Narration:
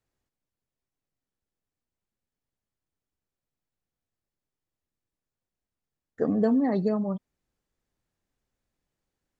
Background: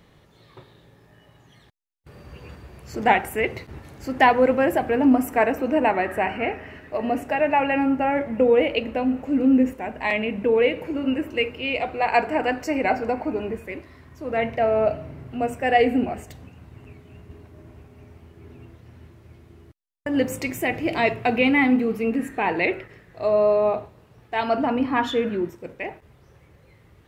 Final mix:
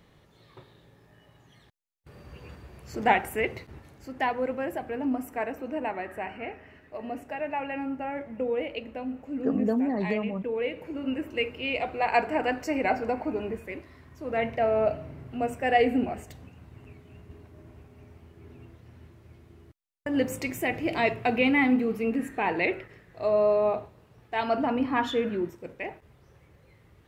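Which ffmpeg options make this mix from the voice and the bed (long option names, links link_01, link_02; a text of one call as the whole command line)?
ffmpeg -i stem1.wav -i stem2.wav -filter_complex "[0:a]adelay=3250,volume=-3dB[link_01];[1:a]volume=3.5dB,afade=type=out:start_time=3.4:duration=0.7:silence=0.421697,afade=type=in:start_time=10.55:duration=1.07:silence=0.421697[link_02];[link_01][link_02]amix=inputs=2:normalize=0" out.wav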